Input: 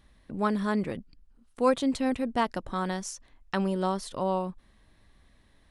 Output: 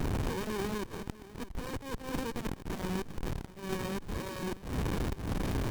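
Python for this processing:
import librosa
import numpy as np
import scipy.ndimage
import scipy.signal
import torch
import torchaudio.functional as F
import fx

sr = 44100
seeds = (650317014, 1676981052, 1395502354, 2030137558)

p1 = x + 0.5 * 10.0 ** (-26.5 / 20.0) * np.diff(np.sign(x), prepend=np.sign(x[:1]))
p2 = scipy.signal.sosfilt(scipy.signal.cheby2(4, 70, 1300.0, 'highpass', fs=sr, output='sos'), p1)
p3 = fx.auto_swell(p2, sr, attack_ms=200.0)
p4 = fx.vibrato(p3, sr, rate_hz=4.8, depth_cents=9.6)
p5 = p4 + fx.echo_single(p4, sr, ms=651, db=-17.5, dry=0)
p6 = fx.running_max(p5, sr, window=65)
y = F.gain(torch.from_numpy(p6), 4.0).numpy()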